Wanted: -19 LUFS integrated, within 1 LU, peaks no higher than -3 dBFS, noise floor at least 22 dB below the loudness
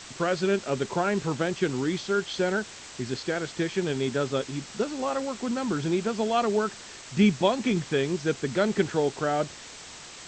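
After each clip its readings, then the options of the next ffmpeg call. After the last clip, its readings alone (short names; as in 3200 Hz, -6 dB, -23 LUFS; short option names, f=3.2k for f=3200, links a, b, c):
noise floor -44 dBFS; noise floor target -50 dBFS; loudness -27.5 LUFS; peak -9.0 dBFS; loudness target -19.0 LUFS
-> -af "afftdn=nr=6:nf=-44"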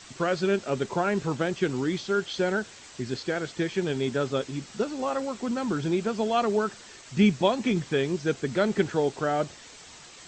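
noise floor -48 dBFS; noise floor target -50 dBFS
-> -af "afftdn=nr=6:nf=-48"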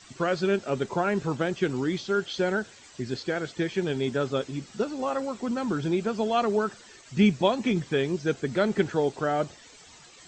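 noise floor -51 dBFS; loudness -27.5 LUFS; peak -9.5 dBFS; loudness target -19.0 LUFS
-> -af "volume=8.5dB,alimiter=limit=-3dB:level=0:latency=1"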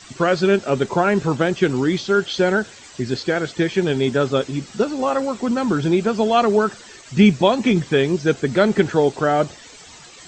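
loudness -19.0 LUFS; peak -3.0 dBFS; noise floor -43 dBFS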